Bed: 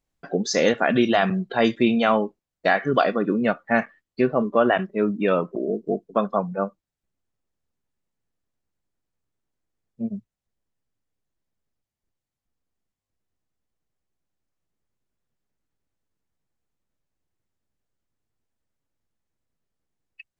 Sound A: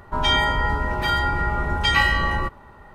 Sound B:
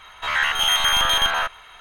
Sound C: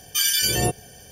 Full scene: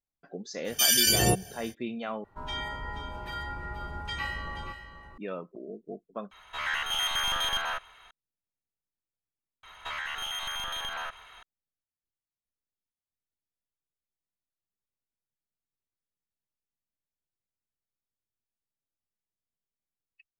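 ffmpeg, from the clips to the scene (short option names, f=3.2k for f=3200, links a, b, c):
-filter_complex "[2:a]asplit=2[a][b];[0:a]volume=-16dB[c];[1:a]aecho=1:1:479:0.282[d];[a]acontrast=82[e];[b]acompressor=threshold=-26dB:ratio=6:attack=3.2:release=140:knee=1:detection=peak[f];[c]asplit=4[g][h][i][j];[g]atrim=end=2.244[k];[d]atrim=end=2.94,asetpts=PTS-STARTPTS,volume=-16dB[l];[h]atrim=start=5.176:end=6.314[m];[e]atrim=end=1.8,asetpts=PTS-STARTPTS,volume=-16.5dB[n];[i]atrim=start=8.106:end=9.634[o];[f]atrim=end=1.8,asetpts=PTS-STARTPTS,volume=-6dB[p];[j]atrim=start=11.426[q];[3:a]atrim=end=1.11,asetpts=PTS-STARTPTS,volume=-1.5dB,afade=t=in:d=0.05,afade=t=out:st=1.06:d=0.05,adelay=640[r];[k][l]acrossfade=d=0.004:c1=hsin:c2=hsin[s];[s][m]acrossfade=d=0.004:c1=hsin:c2=hsin[t];[t][n]acrossfade=d=0.004:c1=hsin:c2=hsin[u];[u][o]acrossfade=d=0.004:c1=hsin:c2=hsin[v];[v][p]acrossfade=d=0.004:c1=hsin:c2=hsin[w];[w][q]acrossfade=d=0.004:c1=hsin:c2=hsin[x];[x][r]amix=inputs=2:normalize=0"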